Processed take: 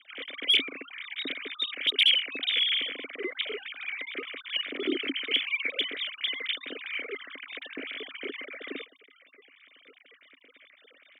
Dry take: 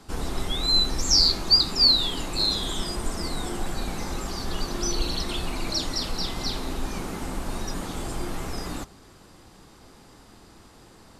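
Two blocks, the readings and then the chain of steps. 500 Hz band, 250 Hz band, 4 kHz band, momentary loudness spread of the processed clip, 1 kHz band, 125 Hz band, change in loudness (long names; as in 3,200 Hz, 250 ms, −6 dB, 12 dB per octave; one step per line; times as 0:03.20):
−4.0 dB, −7.5 dB, −3.5 dB, 15 LU, −14.5 dB, below −35 dB, −4.0 dB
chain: three sine waves on the formant tracks
harmonic generator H 5 −8 dB, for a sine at −3 dBFS
formant filter i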